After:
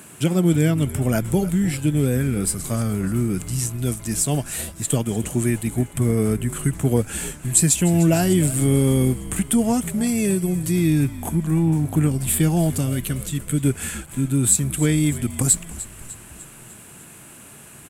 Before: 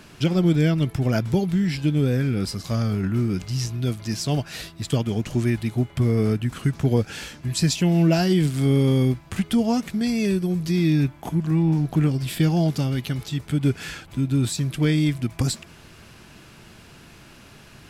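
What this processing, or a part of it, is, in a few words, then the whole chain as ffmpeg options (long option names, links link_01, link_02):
budget condenser microphone: -filter_complex "[0:a]highpass=100,highshelf=frequency=6600:width_type=q:width=3:gain=10,asettb=1/sr,asplit=3[link_01][link_02][link_03];[link_01]atrim=end=12.804[link_04];[link_02]atrim=start=12.8:end=13.64,asetpts=PTS-STARTPTS,afade=type=in:duration=0.004:curve=qsin,afade=type=out:start_time=0.836:duration=0.004:curve=qsin,equalizer=frequency=810:width_type=o:width=0.22:gain=-14[link_05];[link_03]atrim=start=13.636[link_06];[link_04][link_05]acrossfade=duration=0.004:curve1=hsin:curve2=qsin[link_07];[link_07][link_06]acrossfade=duration=0.004:curve1=qsin:curve2=hsin,asplit=6[link_08][link_09][link_10][link_11][link_12][link_13];[link_09]adelay=300,afreqshift=-66,volume=-15.5dB[link_14];[link_10]adelay=600,afreqshift=-132,volume=-20.7dB[link_15];[link_11]adelay=900,afreqshift=-198,volume=-25.9dB[link_16];[link_12]adelay=1200,afreqshift=-264,volume=-31.1dB[link_17];[link_13]adelay=1500,afreqshift=-330,volume=-36.3dB[link_18];[link_08][link_14][link_15][link_16][link_17][link_18]amix=inputs=6:normalize=0,volume=1.5dB"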